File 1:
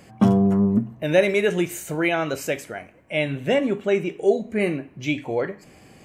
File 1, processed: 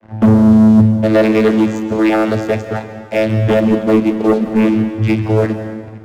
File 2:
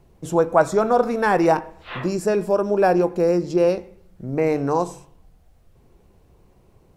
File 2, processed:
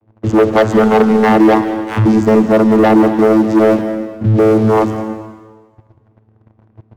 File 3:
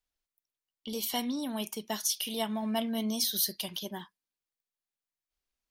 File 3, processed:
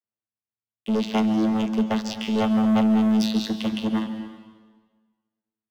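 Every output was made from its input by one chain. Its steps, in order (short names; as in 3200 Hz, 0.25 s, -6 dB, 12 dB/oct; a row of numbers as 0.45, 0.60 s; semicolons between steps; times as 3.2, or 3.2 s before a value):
vocoder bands 16, saw 109 Hz; in parallel at 0 dB: compressor 8:1, threshold -27 dBFS; on the sum: low-pass opened by the level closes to 2600 Hz, open at -15.5 dBFS; sample leveller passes 3; plate-style reverb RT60 1.4 s, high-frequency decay 0.95×, pre-delay 0.12 s, DRR 8.5 dB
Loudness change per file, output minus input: +9.5, +9.0, +9.5 LU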